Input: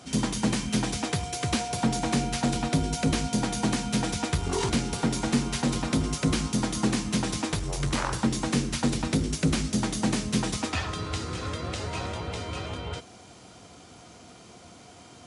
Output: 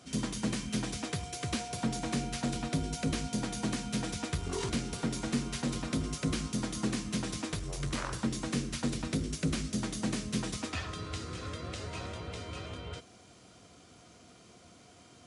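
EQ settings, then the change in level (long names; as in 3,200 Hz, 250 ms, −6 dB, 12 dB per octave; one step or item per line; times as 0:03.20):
parametric band 850 Hz −7.5 dB 0.27 octaves
−7.0 dB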